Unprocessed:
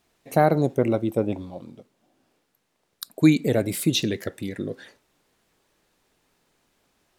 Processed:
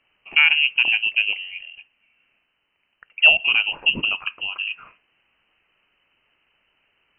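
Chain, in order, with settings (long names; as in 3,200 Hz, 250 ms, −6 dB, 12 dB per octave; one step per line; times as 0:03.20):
voice inversion scrambler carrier 3,000 Hz
level +2.5 dB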